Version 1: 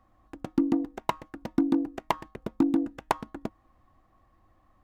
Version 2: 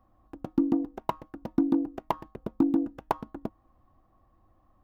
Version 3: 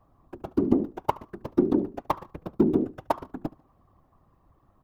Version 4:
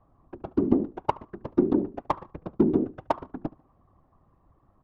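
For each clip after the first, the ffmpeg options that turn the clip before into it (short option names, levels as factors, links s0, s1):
-af "equalizer=f=2000:t=o:w=1:g=-8,equalizer=f=4000:t=o:w=1:g=-4,equalizer=f=8000:t=o:w=1:g=-11"
-af "afftfilt=real='hypot(re,im)*cos(2*PI*random(0))':imag='hypot(re,im)*sin(2*PI*random(1))':win_size=512:overlap=0.75,aecho=1:1:72|144:0.0794|0.0278,volume=2.66"
-af "adynamicsmooth=sensitivity=2:basefreq=3000"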